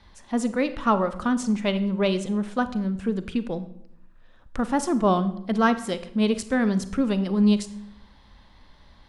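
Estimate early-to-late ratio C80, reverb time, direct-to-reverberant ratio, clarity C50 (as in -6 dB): 17.0 dB, 0.80 s, 12.0 dB, 14.0 dB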